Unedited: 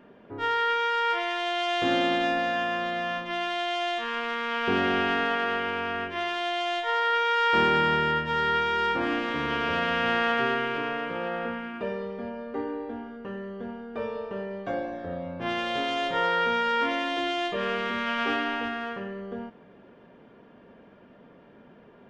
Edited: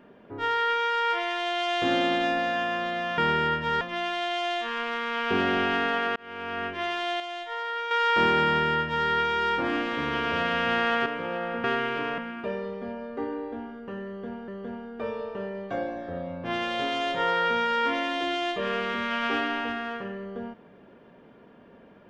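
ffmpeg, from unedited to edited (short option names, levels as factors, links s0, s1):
-filter_complex "[0:a]asplit=10[s0][s1][s2][s3][s4][s5][s6][s7][s8][s9];[s0]atrim=end=3.182[s10];[s1]atrim=start=7.818:end=8.452[s11];[s2]atrim=start=3.178:end=5.53,asetpts=PTS-STARTPTS,afade=t=out:st=2.348:d=0.004:c=hsin[s12];[s3]atrim=start=5.53:end=6.572,asetpts=PTS-STARTPTS,afade=t=in:d=0.47[s13];[s4]atrim=start=6.568:end=7.282,asetpts=PTS-STARTPTS,volume=0.447[s14];[s5]atrim=start=7.278:end=10.432[s15];[s6]atrim=start=10.968:end=11.552[s16];[s7]atrim=start=10.428:end=10.972[s17];[s8]atrim=start=11.548:end=13.852[s18];[s9]atrim=start=13.438[s19];[s10][s11]acrossfade=d=0.004:c1=hsin:c2=hsin[s20];[s12][s13]concat=n=2:v=0:a=1[s21];[s20][s21]acrossfade=d=0.004:c1=hsin:c2=hsin[s22];[s22][s14]acrossfade=d=0.004:c1=hsin:c2=hsin[s23];[s23][s15]acrossfade=d=0.004:c1=hsin:c2=hsin[s24];[s24][s16]acrossfade=d=0.004:c1=hsin:c2=hsin[s25];[s25][s17]acrossfade=d=0.004:c1=hsin:c2=hsin[s26];[s26][s18]acrossfade=d=0.004:c1=hsin:c2=hsin[s27];[s27][s19]acrossfade=d=0.004:c1=hsin:c2=hsin"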